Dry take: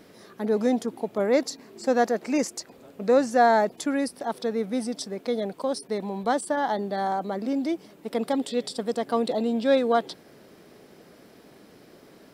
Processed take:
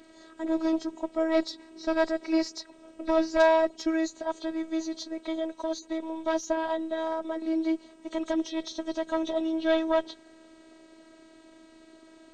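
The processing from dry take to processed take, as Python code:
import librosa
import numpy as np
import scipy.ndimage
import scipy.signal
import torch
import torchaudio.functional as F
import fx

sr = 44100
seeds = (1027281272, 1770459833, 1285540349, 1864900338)

y = fx.freq_compress(x, sr, knee_hz=3000.0, ratio=1.5)
y = fx.cheby_harmonics(y, sr, harmonics=(4, 5, 6, 7), levels_db=(-14, -27, -26, -31), full_scale_db=-7.5)
y = fx.robotise(y, sr, hz=322.0)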